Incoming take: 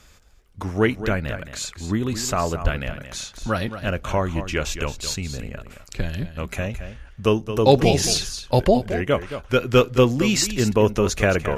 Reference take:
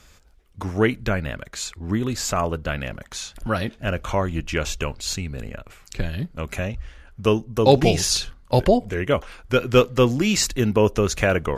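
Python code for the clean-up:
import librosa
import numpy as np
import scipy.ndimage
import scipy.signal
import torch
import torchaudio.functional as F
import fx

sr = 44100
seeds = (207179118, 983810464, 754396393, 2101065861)

y = fx.fix_deplosive(x, sr, at_s=(2.63,))
y = fx.fix_echo_inverse(y, sr, delay_ms=220, level_db=-11.0)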